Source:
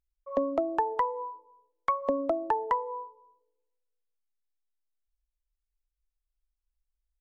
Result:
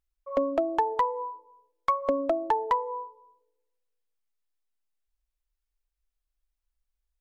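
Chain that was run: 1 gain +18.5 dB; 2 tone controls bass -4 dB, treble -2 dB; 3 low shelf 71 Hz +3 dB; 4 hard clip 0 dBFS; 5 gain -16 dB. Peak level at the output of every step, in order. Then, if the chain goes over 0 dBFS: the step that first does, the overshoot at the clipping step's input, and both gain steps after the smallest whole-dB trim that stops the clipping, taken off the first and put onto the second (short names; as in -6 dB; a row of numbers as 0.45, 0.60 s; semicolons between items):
+5.0, +5.0, +5.0, 0.0, -16.0 dBFS; step 1, 5.0 dB; step 1 +13.5 dB, step 5 -11 dB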